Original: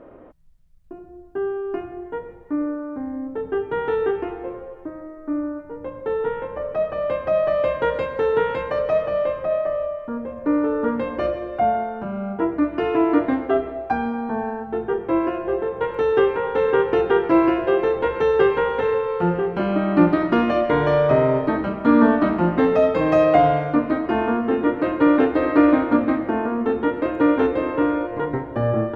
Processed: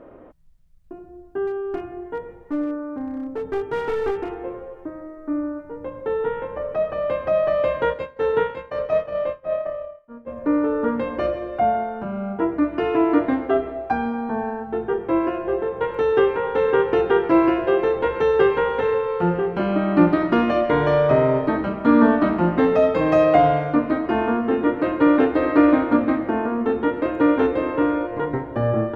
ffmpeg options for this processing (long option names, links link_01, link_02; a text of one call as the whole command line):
ffmpeg -i in.wav -filter_complex "[0:a]asettb=1/sr,asplit=3[link_01][link_02][link_03];[link_01]atrim=end=1.474[link_04];[link_02]atrim=start=1.47:end=4.4,asetpts=PTS-STARTPTS,afade=type=in:duration=0.004:curve=qsin,afade=type=out:start_time=2.926:duration=0.004:curve=qsin,aeval=exprs='clip(val(0),-1,0.0631)':channel_layout=same[link_05];[link_03]atrim=start=4.396[link_06];[link_04][link_05]acrossfade=duration=0.004:curve1=hsin:curve2=qsin[link_07];[link_07][link_06]acrossfade=duration=0.004:curve1=qsin:curve2=hsin,asplit=3[link_08][link_09][link_10];[link_08]afade=type=out:start_time=7.92:duration=0.02[link_11];[link_09]agate=range=-33dB:threshold=-19dB:ratio=3:release=100:detection=peak,afade=type=in:start_time=7.92:duration=0.02,afade=type=out:start_time=10.26:duration=0.02[link_12];[link_10]afade=type=in:start_time=10.26:duration=0.02[link_13];[link_11][link_12][link_13]amix=inputs=3:normalize=0" out.wav